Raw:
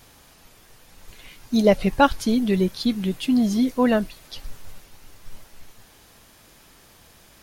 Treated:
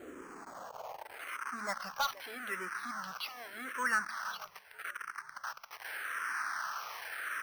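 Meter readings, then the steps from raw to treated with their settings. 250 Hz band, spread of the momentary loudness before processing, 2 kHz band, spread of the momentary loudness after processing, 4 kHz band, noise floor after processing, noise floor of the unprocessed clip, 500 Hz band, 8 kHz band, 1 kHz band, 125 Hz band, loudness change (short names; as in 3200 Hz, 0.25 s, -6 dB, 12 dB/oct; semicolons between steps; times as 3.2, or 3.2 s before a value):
-31.0 dB, 15 LU, 0.0 dB, 12 LU, -10.0 dB, -56 dBFS, -53 dBFS, -24.0 dB, -6.0 dB, -9.5 dB, under -30 dB, -17.5 dB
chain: zero-crossing step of -25.5 dBFS; in parallel at +0.5 dB: limiter -15 dBFS, peak gain reduction 11.5 dB; on the sum: de-hum 56.01 Hz, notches 6; band-pass sweep 330 Hz -> 1500 Hz, 0.18–1.63; low shelf 450 Hz -8.5 dB; on a send: frequency-shifting echo 0.477 s, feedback 54%, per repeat -31 Hz, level -21 dB; on the sum: careless resampling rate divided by 6×, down filtered, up hold; bell 1300 Hz +8.5 dB 1.1 oct; soft clip -16.5 dBFS, distortion -7 dB; endless phaser -0.83 Hz; gain -5 dB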